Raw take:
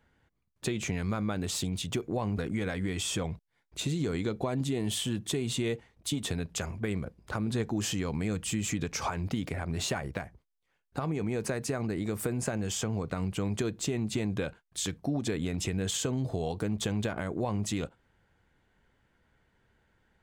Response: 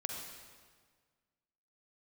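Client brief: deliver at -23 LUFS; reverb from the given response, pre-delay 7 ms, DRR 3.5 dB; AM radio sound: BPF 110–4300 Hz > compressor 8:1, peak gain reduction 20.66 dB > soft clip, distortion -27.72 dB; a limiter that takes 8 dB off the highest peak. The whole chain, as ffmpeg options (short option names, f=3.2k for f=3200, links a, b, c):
-filter_complex "[0:a]alimiter=level_in=2dB:limit=-24dB:level=0:latency=1,volume=-2dB,asplit=2[a][b];[1:a]atrim=start_sample=2205,adelay=7[c];[b][c]afir=irnorm=-1:irlink=0,volume=-4.5dB[d];[a][d]amix=inputs=2:normalize=0,highpass=110,lowpass=4.3k,acompressor=threshold=-48dB:ratio=8,asoftclip=threshold=-37dB,volume=28.5dB"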